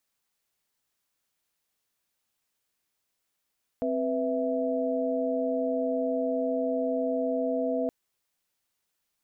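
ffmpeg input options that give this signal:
-f lavfi -i "aevalsrc='0.0335*(sin(2*PI*261.63*t)+sin(2*PI*493.88*t)+sin(2*PI*659.26*t))':d=4.07:s=44100"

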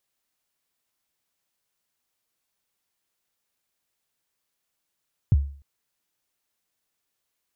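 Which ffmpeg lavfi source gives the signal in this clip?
-f lavfi -i "aevalsrc='0.282*pow(10,-3*t/0.45)*sin(2*PI*(140*0.031/log(70/140)*(exp(log(70/140)*min(t,0.031)/0.031)-1)+70*max(t-0.031,0)))':d=0.3:s=44100"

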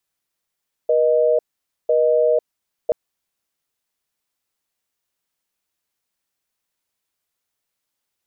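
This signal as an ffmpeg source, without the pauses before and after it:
-f lavfi -i "aevalsrc='0.158*(sin(2*PI*480*t)+sin(2*PI*620*t))*clip(min(mod(t,1),0.5-mod(t,1))/0.005,0,1)':d=2.03:s=44100"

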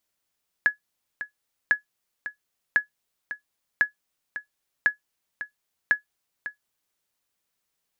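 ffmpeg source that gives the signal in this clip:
-f lavfi -i "aevalsrc='0.316*(sin(2*PI*1690*mod(t,1.05))*exp(-6.91*mod(t,1.05)/0.12)+0.224*sin(2*PI*1690*max(mod(t,1.05)-0.55,0))*exp(-6.91*max(mod(t,1.05)-0.55,0)/0.12))':d=6.3:s=44100"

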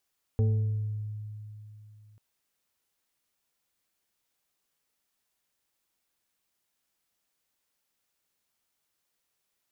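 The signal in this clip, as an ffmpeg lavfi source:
-f lavfi -i "aevalsrc='0.1*pow(10,-3*t/3.14)*sin(2*PI*106*t+0.52*pow(10,-3*t/1.33)*sin(2*PI*3.15*106*t))':d=1.79:s=44100"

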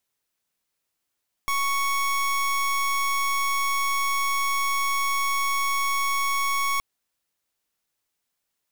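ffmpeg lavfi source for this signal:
-f lavfi -i "aevalsrc='0.0631*(2*lt(mod(1110*t,1),0.27)-1)':d=5.32:s=44100"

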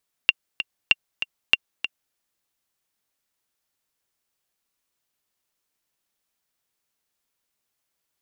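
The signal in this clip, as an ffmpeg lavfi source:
-f lavfi -i "aevalsrc='pow(10,(-1.5-10.5*gte(mod(t,2*60/193),60/193))/20)*sin(2*PI*2770*mod(t,60/193))*exp(-6.91*mod(t,60/193)/0.03)':d=1.86:s=44100"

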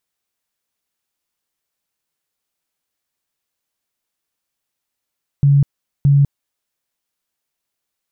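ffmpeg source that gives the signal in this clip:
-f lavfi -i "aevalsrc='0.398*sin(2*PI*141*mod(t,0.62))*lt(mod(t,0.62),28/141)':d=1.24:s=44100"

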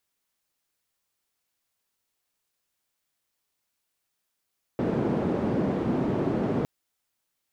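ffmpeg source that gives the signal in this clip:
-f lavfi -i "anoisesrc=c=white:d=1.86:r=44100:seed=1,highpass=f=160,lowpass=f=300,volume=-0.1dB"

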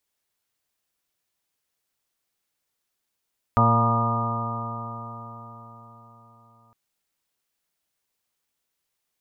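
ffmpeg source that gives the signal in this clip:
-f lavfi -i "aevalsrc='0.112*pow(10,-3*t/4.54)*sin(2*PI*114.08*t)+0.0708*pow(10,-3*t/4.54)*sin(2*PI*228.64*t)+0.0141*pow(10,-3*t/4.54)*sin(2*PI*344.15*t)+0.0251*pow(10,-3*t/4.54)*sin(2*PI*461.08*t)+0.0355*pow(10,-3*t/4.54)*sin(2*PI*579.89*t)+0.0501*pow(10,-3*t/4.54)*sin(2*PI*701.02*t)+0.0299*pow(10,-3*t/4.54)*sin(2*PI*824.92*t)+0.075*pow(10,-3*t/4.54)*sin(2*PI*951.98*t)+0.02*pow(10,-3*t/4.54)*sin(2*PI*1082.61*t)+0.119*pow(10,-3*t/4.54)*sin(2*PI*1217.19*t)':d=3.16:s=44100"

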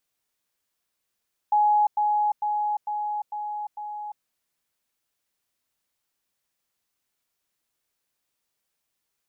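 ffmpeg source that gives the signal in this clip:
-f lavfi -i "aevalsrc='pow(10,(-16.5-3*floor(t/0.45))/20)*sin(2*PI*838*t)*clip(min(mod(t,0.45),0.35-mod(t,0.45))/0.005,0,1)':d=2.7:s=44100"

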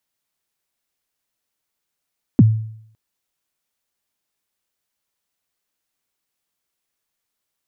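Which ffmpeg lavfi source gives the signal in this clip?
-f lavfi -i "aevalsrc='0.631*pow(10,-3*t/0.67)*sin(2*PI*(310*0.032/log(110/310)*(exp(log(110/310)*min(t,0.032)/0.032)-1)+110*max(t-0.032,0)))':d=0.56:s=44100"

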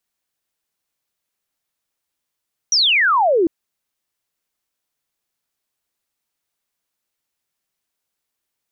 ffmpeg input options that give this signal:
-f lavfi -i "aevalsrc='0.251*clip(t/0.002,0,1)*clip((0.75-t)/0.002,0,1)*sin(2*PI*6000*0.75/log(310/6000)*(exp(log(310/6000)*t/0.75)-1))':d=0.75:s=44100"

